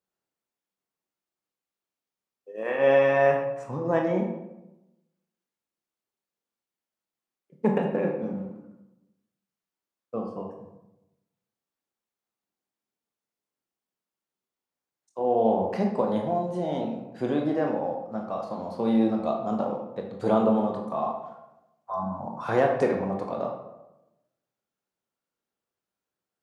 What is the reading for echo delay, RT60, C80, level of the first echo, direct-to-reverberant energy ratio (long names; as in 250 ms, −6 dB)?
no echo audible, 0.95 s, 7.5 dB, no echo audible, 1.0 dB